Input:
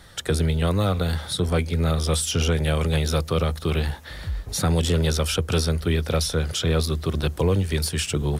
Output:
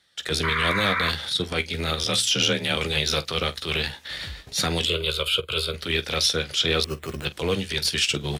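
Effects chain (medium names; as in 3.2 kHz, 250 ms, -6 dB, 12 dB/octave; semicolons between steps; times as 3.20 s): frequency weighting D; gate with hold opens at -30 dBFS; dynamic bell 8.9 kHz, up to -5 dB, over -38 dBFS, Q 1.6; transient shaper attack -12 dB, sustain -8 dB; 0.43–1.10 s: painted sound noise 950–2400 Hz -26 dBFS; 2.04–2.76 s: frequency shift +29 Hz; 4.85–5.74 s: static phaser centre 1.2 kHz, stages 8; on a send: early reflections 15 ms -10.5 dB, 47 ms -17.5 dB; 6.84–7.25 s: on the sum: careless resampling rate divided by 8×, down filtered, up hold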